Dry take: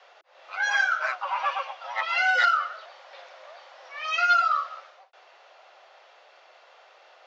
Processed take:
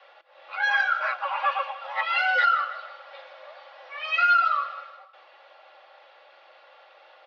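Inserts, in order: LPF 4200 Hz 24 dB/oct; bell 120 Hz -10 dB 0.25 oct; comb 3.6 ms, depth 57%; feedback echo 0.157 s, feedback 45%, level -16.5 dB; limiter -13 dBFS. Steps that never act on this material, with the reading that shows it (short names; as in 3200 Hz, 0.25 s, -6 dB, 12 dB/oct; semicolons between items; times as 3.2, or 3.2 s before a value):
bell 120 Hz: input band starts at 480 Hz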